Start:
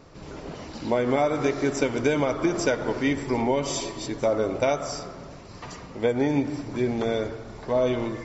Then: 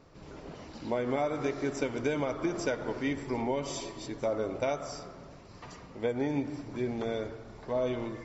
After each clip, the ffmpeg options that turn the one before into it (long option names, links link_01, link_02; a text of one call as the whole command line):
ffmpeg -i in.wav -af "highshelf=frequency=6300:gain=-4,volume=-7.5dB" out.wav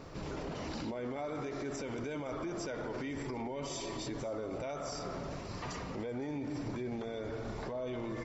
ffmpeg -i in.wav -af "acompressor=threshold=-42dB:ratio=2.5,alimiter=level_in=16.5dB:limit=-24dB:level=0:latency=1:release=25,volume=-16.5dB,aecho=1:1:511:0.0794,volume=9dB" out.wav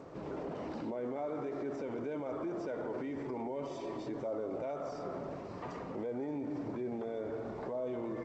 ffmpeg -i in.wav -af "bandpass=frequency=470:width_type=q:width=0.62:csg=0,volume=2dB" -ar 16000 -c:a g722 out.g722